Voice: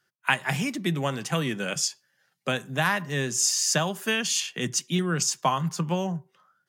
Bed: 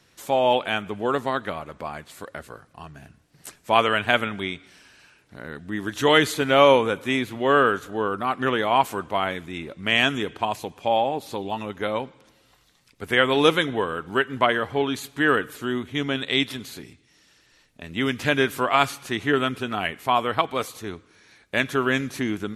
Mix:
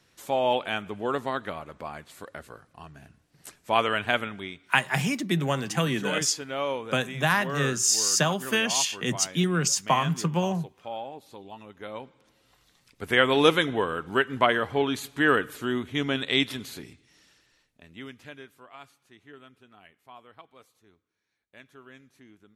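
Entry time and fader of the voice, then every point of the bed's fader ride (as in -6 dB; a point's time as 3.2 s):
4.45 s, +1.0 dB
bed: 4.09 s -4.5 dB
5.06 s -14.5 dB
11.71 s -14.5 dB
12.72 s -1.5 dB
17.24 s -1.5 dB
18.56 s -27.5 dB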